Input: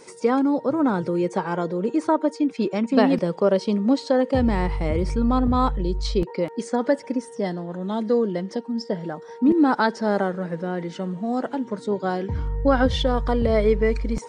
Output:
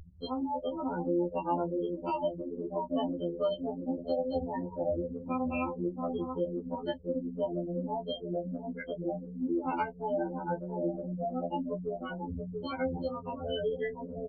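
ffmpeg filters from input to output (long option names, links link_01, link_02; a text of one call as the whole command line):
ffmpeg -i in.wav -filter_complex "[0:a]bass=frequency=250:gain=-8,treble=frequency=4000:gain=4,aeval=exprs='val(0)+0.02*(sin(2*PI*60*n/s)+sin(2*PI*2*60*n/s)/2+sin(2*PI*3*60*n/s)/3+sin(2*PI*4*60*n/s)/4+sin(2*PI*5*60*n/s)/5)':channel_layout=same,acompressor=threshold=-25dB:ratio=2.5,bandreject=frequency=128.7:width_type=h:width=4,bandreject=frequency=257.4:width_type=h:width=4,bandreject=frequency=386.1:width_type=h:width=4,bandreject=frequency=514.8:width_type=h:width=4,bandreject=frequency=643.5:width_type=h:width=4,bandreject=frequency=772.2:width_type=h:width=4,bandreject=frequency=900.9:width_type=h:width=4,bandreject=frequency=1029.6:width_type=h:width=4,bandreject=frequency=1158.3:width_type=h:width=4,bandreject=frequency=1287:width_type=h:width=4,bandreject=frequency=1415.7:width_type=h:width=4,bandreject=frequency=1544.4:width_type=h:width=4,bandreject=frequency=1673.1:width_type=h:width=4,bandreject=frequency=1801.8:width_type=h:width=4,bandreject=frequency=1930.5:width_type=h:width=4,acrusher=samples=12:mix=1:aa=0.000001,asplit=2[link_01][link_02];[link_02]adelay=683,lowpass=frequency=3000:poles=1,volume=-6.5dB,asplit=2[link_03][link_04];[link_04]adelay=683,lowpass=frequency=3000:poles=1,volume=0.4,asplit=2[link_05][link_06];[link_06]adelay=683,lowpass=frequency=3000:poles=1,volume=0.4,asplit=2[link_07][link_08];[link_08]adelay=683,lowpass=frequency=3000:poles=1,volume=0.4,asplit=2[link_09][link_10];[link_10]adelay=683,lowpass=frequency=3000:poles=1,volume=0.4[link_11];[link_03][link_05][link_07][link_09][link_11]amix=inputs=5:normalize=0[link_12];[link_01][link_12]amix=inputs=2:normalize=0,afftfilt=real='re*gte(hypot(re,im),0.1)':imag='im*gte(hypot(re,im),0.1)':win_size=1024:overlap=0.75,adynamicequalizer=threshold=0.0178:dfrequency=670:dqfactor=0.7:tfrequency=670:tqfactor=0.7:attack=5:release=100:ratio=0.375:range=1.5:mode=boostabove:tftype=bell,acrossover=split=150|890|3600[link_13][link_14][link_15][link_16];[link_13]acompressor=threshold=-39dB:ratio=4[link_17];[link_14]acompressor=threshold=-34dB:ratio=4[link_18];[link_15]acompressor=threshold=-37dB:ratio=4[link_19];[link_16]acompressor=threshold=-57dB:ratio=4[link_20];[link_17][link_18][link_19][link_20]amix=inputs=4:normalize=0,asplit=2[link_21][link_22];[link_22]adelay=15,volume=-11dB[link_23];[link_21][link_23]amix=inputs=2:normalize=0,afftfilt=real='re*2*eq(mod(b,4),0)':imag='im*2*eq(mod(b,4),0)':win_size=2048:overlap=0.75,volume=2dB" out.wav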